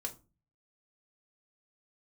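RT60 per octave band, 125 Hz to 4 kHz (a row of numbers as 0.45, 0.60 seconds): 0.65, 0.50, 0.35, 0.30, 0.20, 0.20 seconds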